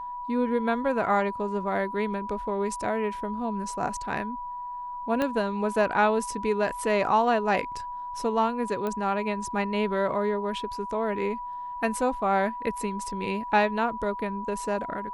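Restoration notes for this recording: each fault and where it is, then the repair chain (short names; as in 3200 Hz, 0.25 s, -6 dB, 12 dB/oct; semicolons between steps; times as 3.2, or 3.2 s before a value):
tone 980 Hz -33 dBFS
5.22 pop -14 dBFS
8.87 pop -18 dBFS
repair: de-click; notch 980 Hz, Q 30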